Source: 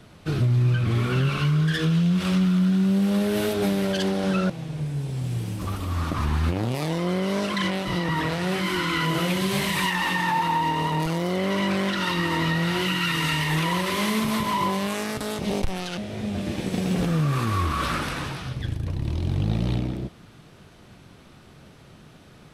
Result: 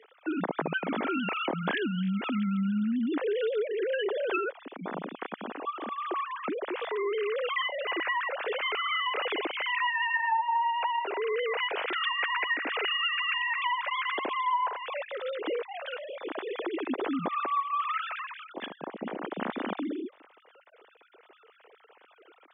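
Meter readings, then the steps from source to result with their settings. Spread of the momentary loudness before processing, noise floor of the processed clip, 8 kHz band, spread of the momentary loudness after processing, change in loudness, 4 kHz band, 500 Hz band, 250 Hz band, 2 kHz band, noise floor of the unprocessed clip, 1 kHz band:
8 LU, −60 dBFS, below −40 dB, 11 LU, −6.0 dB, −4.5 dB, −2.5 dB, −9.5 dB, −2.0 dB, −49 dBFS, −2.0 dB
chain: three sine waves on the formant tracks
high-pass filter 250 Hz 24 dB per octave
downward compressor, threshold −26 dBFS, peak gain reduction 15.5 dB

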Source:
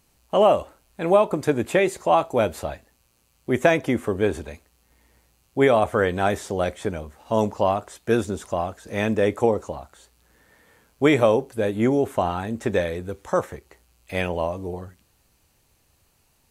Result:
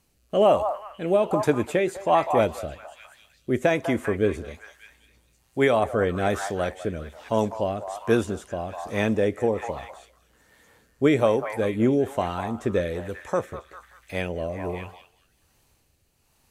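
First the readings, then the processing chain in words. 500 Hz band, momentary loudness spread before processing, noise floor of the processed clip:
−2.0 dB, 14 LU, −66 dBFS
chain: echo through a band-pass that steps 199 ms, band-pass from 920 Hz, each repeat 0.7 octaves, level −6 dB
rotating-speaker cabinet horn 1.2 Hz

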